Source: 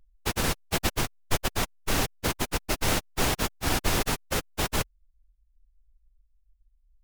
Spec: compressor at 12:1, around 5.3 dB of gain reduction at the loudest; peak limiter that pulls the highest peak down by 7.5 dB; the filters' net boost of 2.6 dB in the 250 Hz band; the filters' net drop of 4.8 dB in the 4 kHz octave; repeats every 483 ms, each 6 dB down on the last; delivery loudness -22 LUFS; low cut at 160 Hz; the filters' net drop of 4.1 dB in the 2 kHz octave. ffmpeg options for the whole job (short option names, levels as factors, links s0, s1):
-af "highpass=160,equalizer=f=250:t=o:g=4.5,equalizer=f=2000:t=o:g=-4,equalizer=f=4000:t=o:g=-5,acompressor=threshold=0.0398:ratio=12,alimiter=level_in=1.12:limit=0.0631:level=0:latency=1,volume=0.891,aecho=1:1:483|966|1449|1932|2415|2898:0.501|0.251|0.125|0.0626|0.0313|0.0157,volume=5.31"